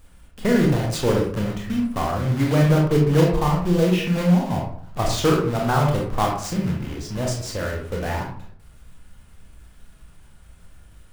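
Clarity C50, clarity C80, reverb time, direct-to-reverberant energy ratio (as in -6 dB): 4.0 dB, 8.0 dB, 0.60 s, -1.0 dB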